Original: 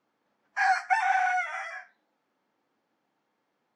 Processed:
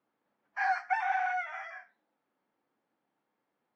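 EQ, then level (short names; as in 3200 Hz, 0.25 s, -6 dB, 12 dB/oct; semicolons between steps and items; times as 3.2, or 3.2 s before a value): air absorption 170 m; -4.5 dB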